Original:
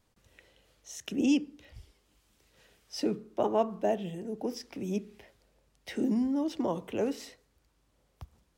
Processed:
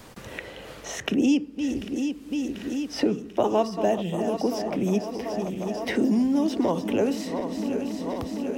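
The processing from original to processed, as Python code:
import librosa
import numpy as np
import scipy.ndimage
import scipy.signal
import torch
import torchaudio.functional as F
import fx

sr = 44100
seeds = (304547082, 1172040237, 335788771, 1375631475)

y = fx.reverse_delay_fb(x, sr, ms=370, feedback_pct=78, wet_db=-12.5)
y = fx.band_squash(y, sr, depth_pct=70)
y = F.gain(torch.from_numpy(y), 7.0).numpy()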